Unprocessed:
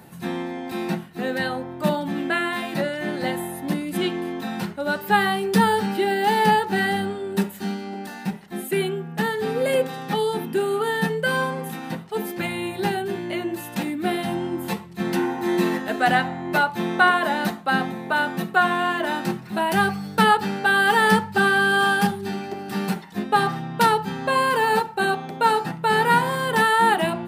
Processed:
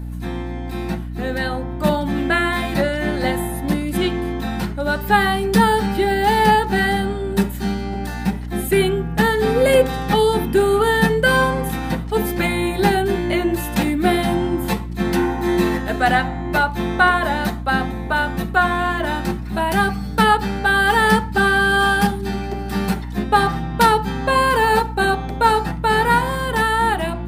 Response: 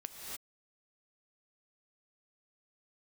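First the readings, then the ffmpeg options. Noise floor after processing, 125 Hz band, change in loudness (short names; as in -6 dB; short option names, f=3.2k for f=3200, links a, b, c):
-27 dBFS, +7.5 dB, +4.0 dB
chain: -af "dynaudnorm=f=250:g=13:m=11.5dB,aeval=exprs='val(0)+0.0501*(sin(2*PI*60*n/s)+sin(2*PI*2*60*n/s)/2+sin(2*PI*3*60*n/s)/3+sin(2*PI*4*60*n/s)/4+sin(2*PI*5*60*n/s)/5)':c=same,bandreject=f=2.8k:w=20,volume=-1dB"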